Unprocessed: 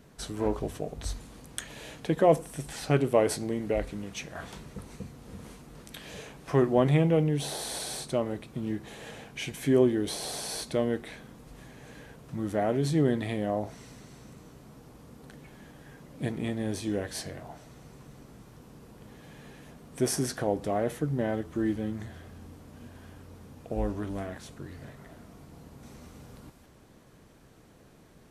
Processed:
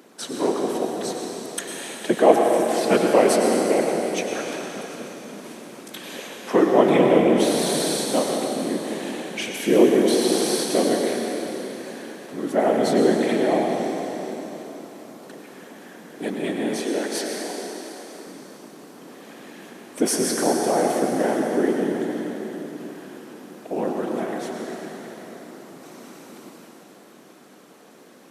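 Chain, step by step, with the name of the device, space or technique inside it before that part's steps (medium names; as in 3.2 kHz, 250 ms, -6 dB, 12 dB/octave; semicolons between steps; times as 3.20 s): whispering ghost (whisper effect; high-pass 220 Hz 24 dB/octave; reverberation RT60 3.9 s, pre-delay 91 ms, DRR 0.5 dB); 16.80–18.27 s: high-pass 260 Hz 12 dB/octave; trim +7 dB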